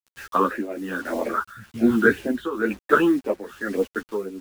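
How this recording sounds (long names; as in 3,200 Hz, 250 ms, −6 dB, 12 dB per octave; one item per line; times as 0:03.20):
phaser sweep stages 8, 1.9 Hz, lowest notch 640–1,300 Hz
a quantiser's noise floor 8 bits, dither none
tremolo triangle 1.1 Hz, depth 80%
a shimmering, thickened sound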